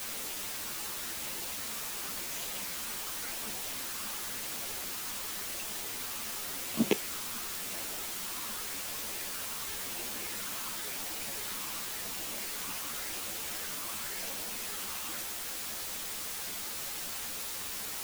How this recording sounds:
phaser sweep stages 8, 0.92 Hz, lowest notch 560–1,600 Hz
a quantiser's noise floor 6 bits, dither triangular
a shimmering, thickened sound

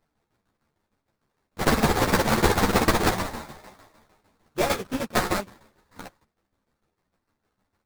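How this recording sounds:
a buzz of ramps at a fixed pitch in blocks of 16 samples
tremolo saw down 6.6 Hz, depth 75%
aliases and images of a low sample rate 2,900 Hz, jitter 20%
a shimmering, thickened sound

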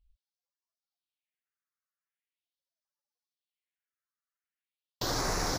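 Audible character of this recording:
aliases and images of a low sample rate 8,500 Hz, jitter 0%
phaser sweep stages 4, 0.42 Hz, lowest notch 530–3,000 Hz
Ogg Vorbis

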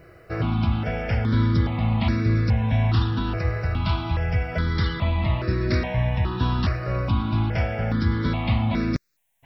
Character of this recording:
a quantiser's noise floor 12 bits, dither triangular
notches that jump at a steady rate 2.4 Hz 910–3,100 Hz

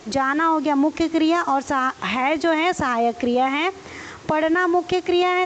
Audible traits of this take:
a quantiser's noise floor 8 bits, dither triangular
AAC

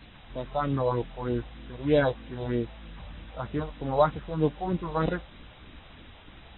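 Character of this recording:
a buzz of ramps at a fixed pitch in blocks of 8 samples
phaser sweep stages 4, 3.2 Hz, lowest notch 270–1,300 Hz
a quantiser's noise floor 8 bits, dither triangular
AAC

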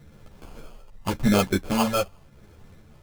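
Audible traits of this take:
phaser sweep stages 4, 0.87 Hz, lowest notch 250–2,600 Hz
aliases and images of a low sample rate 1,900 Hz, jitter 0%
a shimmering, thickened sound

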